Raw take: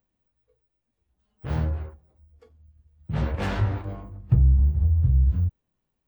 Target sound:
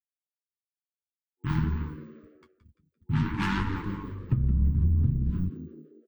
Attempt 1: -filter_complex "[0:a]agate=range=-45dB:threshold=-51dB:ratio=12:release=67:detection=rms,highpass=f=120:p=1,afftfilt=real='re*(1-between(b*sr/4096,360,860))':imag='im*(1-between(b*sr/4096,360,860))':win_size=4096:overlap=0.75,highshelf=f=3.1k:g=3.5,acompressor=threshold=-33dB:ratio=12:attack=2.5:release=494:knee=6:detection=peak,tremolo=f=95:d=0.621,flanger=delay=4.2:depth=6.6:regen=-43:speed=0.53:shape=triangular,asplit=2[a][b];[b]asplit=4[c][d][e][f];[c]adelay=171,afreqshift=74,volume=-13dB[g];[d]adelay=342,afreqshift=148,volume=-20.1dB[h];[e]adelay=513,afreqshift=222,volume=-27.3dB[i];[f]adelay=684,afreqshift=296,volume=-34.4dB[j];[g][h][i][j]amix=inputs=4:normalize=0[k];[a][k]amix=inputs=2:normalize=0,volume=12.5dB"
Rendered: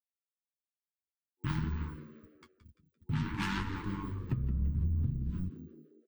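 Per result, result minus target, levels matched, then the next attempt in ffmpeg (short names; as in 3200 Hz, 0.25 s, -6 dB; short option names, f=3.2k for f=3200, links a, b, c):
compressor: peak gain reduction +8.5 dB; 4000 Hz band +4.5 dB
-filter_complex "[0:a]agate=range=-45dB:threshold=-51dB:ratio=12:release=67:detection=rms,highpass=f=120:p=1,afftfilt=real='re*(1-between(b*sr/4096,360,860))':imag='im*(1-between(b*sr/4096,360,860))':win_size=4096:overlap=0.75,highshelf=f=3.1k:g=3.5,acompressor=threshold=-24dB:ratio=12:attack=2.5:release=494:knee=6:detection=peak,tremolo=f=95:d=0.621,flanger=delay=4.2:depth=6.6:regen=-43:speed=0.53:shape=triangular,asplit=2[a][b];[b]asplit=4[c][d][e][f];[c]adelay=171,afreqshift=74,volume=-13dB[g];[d]adelay=342,afreqshift=148,volume=-20.1dB[h];[e]adelay=513,afreqshift=222,volume=-27.3dB[i];[f]adelay=684,afreqshift=296,volume=-34.4dB[j];[g][h][i][j]amix=inputs=4:normalize=0[k];[a][k]amix=inputs=2:normalize=0,volume=12.5dB"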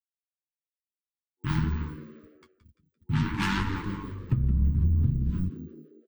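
4000 Hz band +4.0 dB
-filter_complex "[0:a]agate=range=-45dB:threshold=-51dB:ratio=12:release=67:detection=rms,highpass=f=120:p=1,afftfilt=real='re*(1-between(b*sr/4096,360,860))':imag='im*(1-between(b*sr/4096,360,860))':win_size=4096:overlap=0.75,highshelf=f=3.1k:g=-5,acompressor=threshold=-24dB:ratio=12:attack=2.5:release=494:knee=6:detection=peak,tremolo=f=95:d=0.621,flanger=delay=4.2:depth=6.6:regen=-43:speed=0.53:shape=triangular,asplit=2[a][b];[b]asplit=4[c][d][e][f];[c]adelay=171,afreqshift=74,volume=-13dB[g];[d]adelay=342,afreqshift=148,volume=-20.1dB[h];[e]adelay=513,afreqshift=222,volume=-27.3dB[i];[f]adelay=684,afreqshift=296,volume=-34.4dB[j];[g][h][i][j]amix=inputs=4:normalize=0[k];[a][k]amix=inputs=2:normalize=0,volume=12.5dB"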